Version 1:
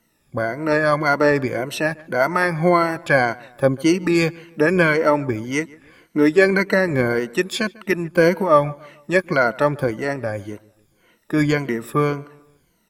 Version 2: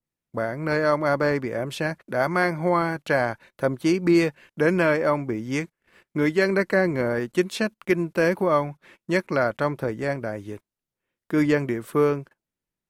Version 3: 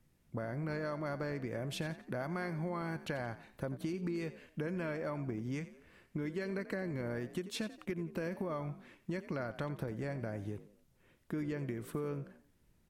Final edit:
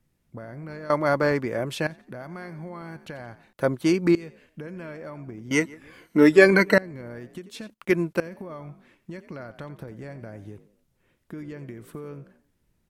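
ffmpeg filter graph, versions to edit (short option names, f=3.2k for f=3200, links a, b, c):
-filter_complex "[1:a]asplit=3[a][b][c];[2:a]asplit=5[d][e][f][g][h];[d]atrim=end=0.902[i];[a]atrim=start=0.898:end=1.872[j];[e]atrim=start=1.868:end=3.532[k];[b]atrim=start=3.528:end=4.152[l];[f]atrim=start=4.148:end=5.512[m];[0:a]atrim=start=5.508:end=6.782[n];[g]atrim=start=6.778:end=7.702[o];[c]atrim=start=7.698:end=8.202[p];[h]atrim=start=8.198[q];[i][j]acrossfade=d=0.004:c1=hsin:c2=hsin[r];[r][k]acrossfade=d=0.004:c1=hsin:c2=hsin[s];[s][l]acrossfade=d=0.004:c1=hsin:c2=hsin[t];[t][m]acrossfade=d=0.004:c1=hsin:c2=hsin[u];[u][n]acrossfade=d=0.004:c1=hsin:c2=hsin[v];[v][o]acrossfade=d=0.004:c1=hsin:c2=hsin[w];[w][p]acrossfade=d=0.004:c1=hsin:c2=hsin[x];[x][q]acrossfade=d=0.004:c1=hsin:c2=hsin"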